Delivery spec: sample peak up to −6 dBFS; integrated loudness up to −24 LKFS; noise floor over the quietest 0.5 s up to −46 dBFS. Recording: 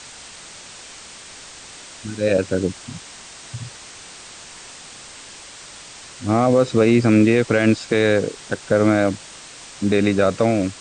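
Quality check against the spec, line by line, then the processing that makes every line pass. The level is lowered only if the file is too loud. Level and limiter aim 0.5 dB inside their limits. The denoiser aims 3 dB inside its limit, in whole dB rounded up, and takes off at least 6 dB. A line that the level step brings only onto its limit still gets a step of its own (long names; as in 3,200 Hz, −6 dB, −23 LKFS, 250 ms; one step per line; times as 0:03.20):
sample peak −5.5 dBFS: out of spec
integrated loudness −18.5 LKFS: out of spec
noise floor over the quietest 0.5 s −40 dBFS: out of spec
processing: broadband denoise 6 dB, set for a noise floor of −40 dBFS
level −6 dB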